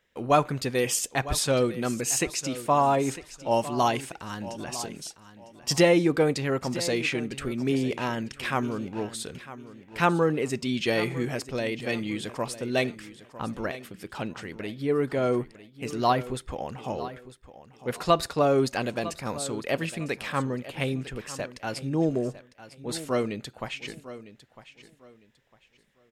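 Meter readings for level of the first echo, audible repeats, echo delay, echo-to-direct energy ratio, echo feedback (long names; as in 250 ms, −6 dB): −15.0 dB, 2, 953 ms, −14.5 dB, 26%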